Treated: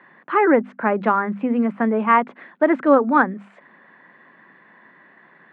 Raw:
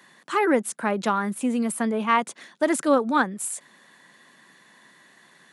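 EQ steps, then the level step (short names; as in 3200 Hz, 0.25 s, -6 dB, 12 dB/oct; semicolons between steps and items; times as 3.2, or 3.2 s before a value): HPF 120 Hz; LPF 2100 Hz 24 dB/oct; notches 50/100/150/200/250 Hz; +5.5 dB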